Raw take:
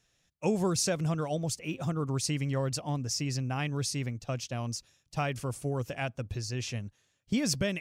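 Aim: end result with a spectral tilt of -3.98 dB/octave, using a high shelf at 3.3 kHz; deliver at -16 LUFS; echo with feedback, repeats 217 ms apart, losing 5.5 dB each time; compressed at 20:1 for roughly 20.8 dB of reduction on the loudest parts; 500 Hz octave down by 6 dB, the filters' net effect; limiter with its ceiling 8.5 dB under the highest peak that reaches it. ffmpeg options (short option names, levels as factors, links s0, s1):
-af "equalizer=f=500:t=o:g=-8,highshelf=f=3300:g=9,acompressor=threshold=0.01:ratio=20,alimiter=level_in=3.76:limit=0.0631:level=0:latency=1,volume=0.266,aecho=1:1:217|434|651|868|1085|1302|1519:0.531|0.281|0.149|0.079|0.0419|0.0222|0.0118,volume=28.2"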